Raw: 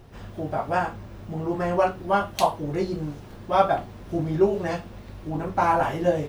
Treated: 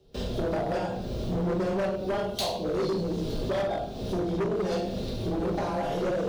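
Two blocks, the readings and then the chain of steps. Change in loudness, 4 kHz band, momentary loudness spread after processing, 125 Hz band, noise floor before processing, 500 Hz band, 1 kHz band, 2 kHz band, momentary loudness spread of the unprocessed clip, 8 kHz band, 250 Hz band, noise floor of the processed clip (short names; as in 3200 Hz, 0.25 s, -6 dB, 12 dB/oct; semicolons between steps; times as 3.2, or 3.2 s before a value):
-4.0 dB, +2.5 dB, 5 LU, -1.5 dB, -43 dBFS, -3.0 dB, -10.0 dB, -7.0 dB, 13 LU, -0.5 dB, -1.0 dB, -36 dBFS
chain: gate with hold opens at -36 dBFS; compressor 5:1, threshold -36 dBFS, peak gain reduction 20.5 dB; shoebox room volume 210 m³, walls mixed, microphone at 1.2 m; frequency shift +16 Hz; graphic EQ 500/1000/2000/4000 Hz +9/-9/-9/+12 dB; hard clip -30 dBFS, distortion -10 dB; gain +5.5 dB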